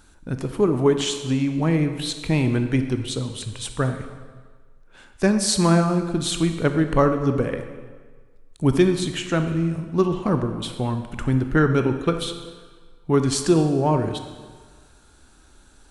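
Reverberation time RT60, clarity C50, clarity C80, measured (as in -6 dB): 1.5 s, 8.0 dB, 9.5 dB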